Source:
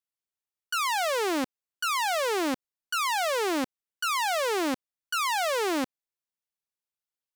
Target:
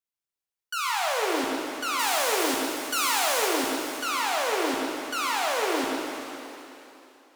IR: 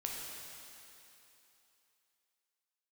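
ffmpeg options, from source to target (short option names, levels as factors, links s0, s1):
-filter_complex "[0:a]asettb=1/sr,asplit=3[s0][s1][s2];[s0]atrim=end=1.994[s3];[s1]atrim=start=1.99:end=3.48,asetpts=PTS-STARTPTS,afade=t=in:d=0.004:c=qsin,afade=t=out:st=1.486:d=0.004:c=qsin,highshelf=f=4900:g=11[s4];[s2]atrim=start=3.476[s5];[s3][s4]acrossfade=d=0.004:c1=hsin:c2=qsin[s6];[s6][s5]acrossfade=d=0.004:c1=qsin:c2=hsin[s7];[1:a]atrim=start_sample=2205[s8];[s7][s8]afir=irnorm=-1:irlink=0"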